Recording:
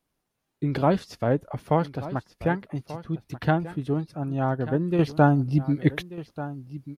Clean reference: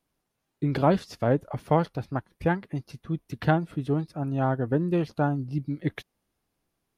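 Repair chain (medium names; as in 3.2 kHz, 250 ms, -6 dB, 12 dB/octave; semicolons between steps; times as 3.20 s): inverse comb 1187 ms -15 dB; trim 0 dB, from 4.99 s -7 dB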